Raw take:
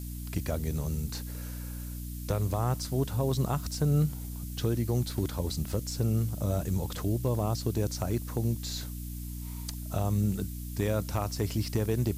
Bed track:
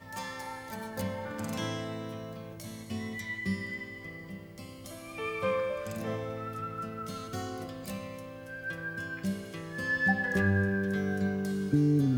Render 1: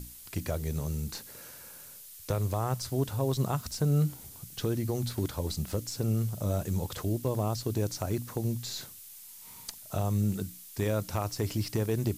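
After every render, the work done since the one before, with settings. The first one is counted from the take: notches 60/120/180/240/300 Hz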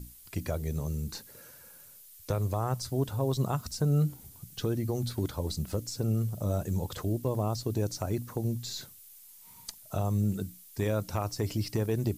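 denoiser 7 dB, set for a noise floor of -49 dBFS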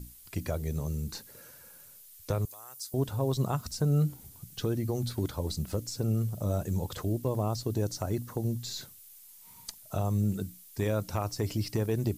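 2.45–2.94 differentiator; 7.64–8.62 notch 2400 Hz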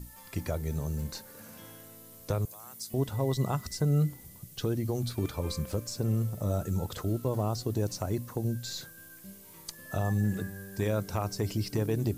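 add bed track -16.5 dB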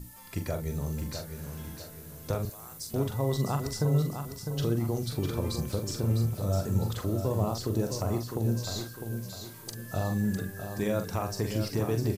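doubler 43 ms -7 dB; feedback echo 0.654 s, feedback 40%, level -7.5 dB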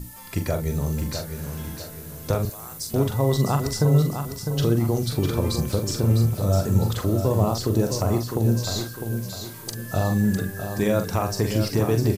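gain +7.5 dB

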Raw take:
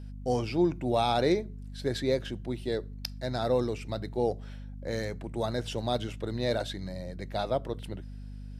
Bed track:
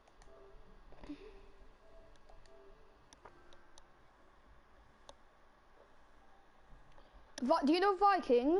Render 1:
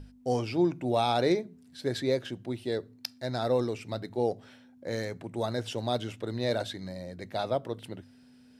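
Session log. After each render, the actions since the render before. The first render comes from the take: notches 50/100/150/200 Hz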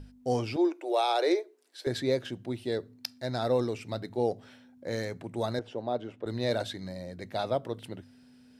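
0.56–1.87 steep high-pass 310 Hz 96 dB/oct; 5.59–6.26 band-pass 510 Hz, Q 0.68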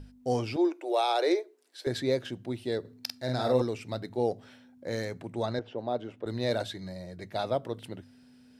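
2.8–3.62 doubler 47 ms -3.5 dB; 5.33–5.77 LPF 8300 Hz -> 3500 Hz; 6.66–7.36 notch comb 260 Hz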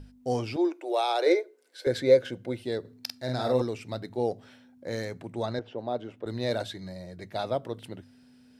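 1.26–2.62 small resonant body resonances 510/1500/2100 Hz, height 13 dB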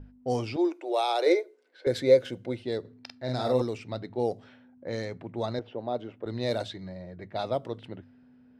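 low-pass opened by the level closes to 1400 Hz, open at -24 dBFS; dynamic EQ 1600 Hz, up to -6 dB, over -58 dBFS, Q 7.4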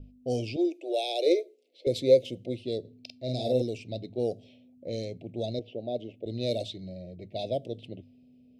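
elliptic band-stop 650–2500 Hz, stop band 50 dB; bell 3600 Hz +2 dB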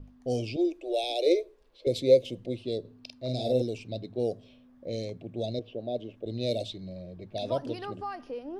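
add bed track -8 dB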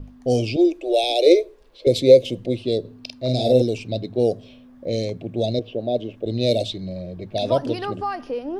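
gain +10 dB; limiter -2 dBFS, peak gain reduction 2.5 dB

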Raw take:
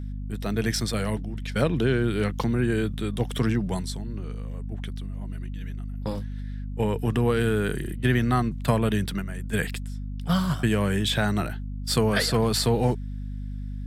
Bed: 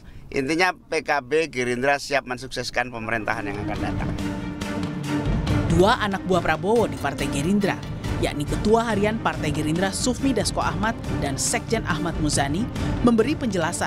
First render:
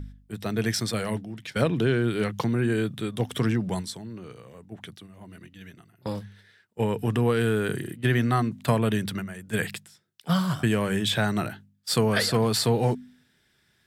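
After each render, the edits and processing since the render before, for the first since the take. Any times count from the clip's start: de-hum 50 Hz, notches 5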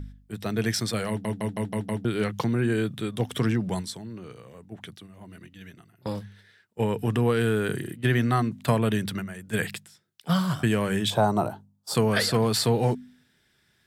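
1.09 stutter in place 0.16 s, 6 plays; 11.1–11.95 EQ curve 250 Hz 0 dB, 960 Hz +11 dB, 1800 Hz -15 dB, 6400 Hz -3 dB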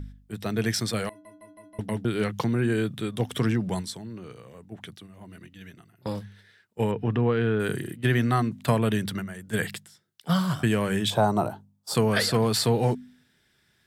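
1.09–1.79 metallic resonator 300 Hz, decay 0.46 s, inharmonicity 0.03; 6.91–7.6 air absorption 260 m; 9.07–10.4 notch 2500 Hz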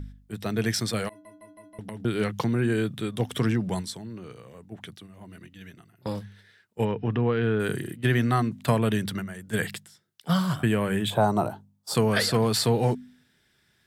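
1.08–2 compressor, threshold -34 dBFS; 6.85–7.43 elliptic low-pass 5900 Hz; 10.56–11.21 bell 5500 Hz -13.5 dB 0.64 oct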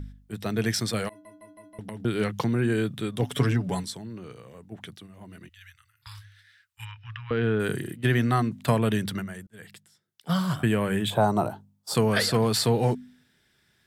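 3.22–3.84 comb 7.1 ms; 5.49–7.31 inverse Chebyshev band-stop 180–630 Hz, stop band 50 dB; 9.47–10.55 fade in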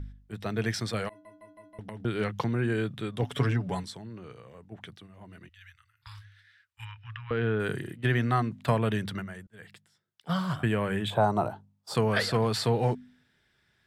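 LPF 2700 Hz 6 dB/oct; bell 240 Hz -5 dB 2 oct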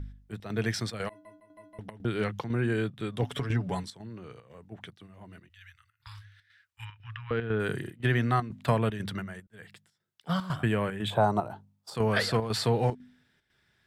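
chopper 2 Hz, depth 60%, duty 80%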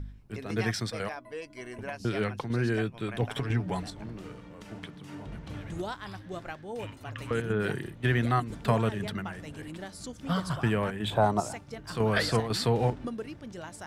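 add bed -18.5 dB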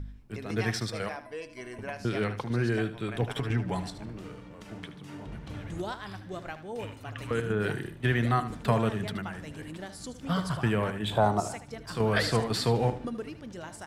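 feedback echo 76 ms, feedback 27%, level -12.5 dB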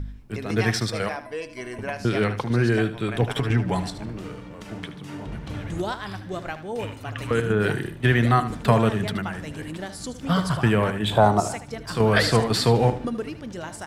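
gain +7 dB

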